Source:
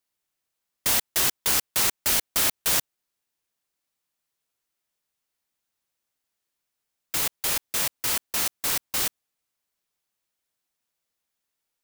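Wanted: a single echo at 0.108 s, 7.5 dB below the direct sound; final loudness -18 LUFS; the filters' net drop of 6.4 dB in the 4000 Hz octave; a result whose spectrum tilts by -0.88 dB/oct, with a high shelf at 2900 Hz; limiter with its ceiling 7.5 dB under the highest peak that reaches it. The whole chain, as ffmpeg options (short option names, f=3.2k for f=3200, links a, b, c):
-af "highshelf=f=2.9k:g=-4,equalizer=f=4k:t=o:g=-5,alimiter=limit=-20.5dB:level=0:latency=1,aecho=1:1:108:0.422,volume=12.5dB"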